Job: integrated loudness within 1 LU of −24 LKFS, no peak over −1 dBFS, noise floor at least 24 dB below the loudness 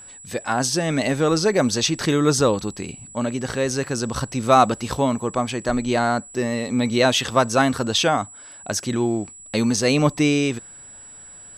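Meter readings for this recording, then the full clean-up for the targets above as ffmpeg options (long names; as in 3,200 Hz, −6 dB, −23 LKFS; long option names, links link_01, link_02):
interfering tone 7,800 Hz; level of the tone −40 dBFS; integrated loudness −21.0 LKFS; sample peak −2.5 dBFS; target loudness −24.0 LKFS
→ -af "bandreject=frequency=7800:width=30"
-af "volume=-3dB"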